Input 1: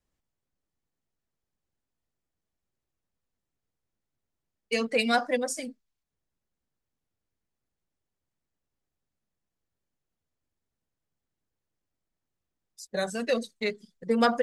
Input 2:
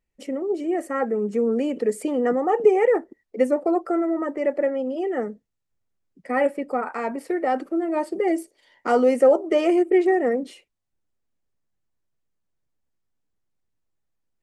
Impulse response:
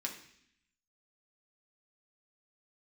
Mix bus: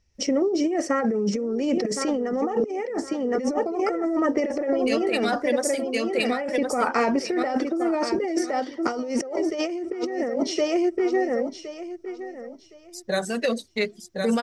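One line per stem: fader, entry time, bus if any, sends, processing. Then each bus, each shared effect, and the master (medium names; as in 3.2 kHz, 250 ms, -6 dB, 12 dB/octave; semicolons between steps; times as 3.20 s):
0.0 dB, 0.15 s, no send, echo send -4 dB, none
+2.5 dB, 0.00 s, no send, echo send -11 dB, resonant low-pass 5.6 kHz, resonance Q 9; peaking EQ 74 Hz +14 dB 1.2 oct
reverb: none
echo: feedback delay 1065 ms, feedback 22%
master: compressor with a negative ratio -24 dBFS, ratio -1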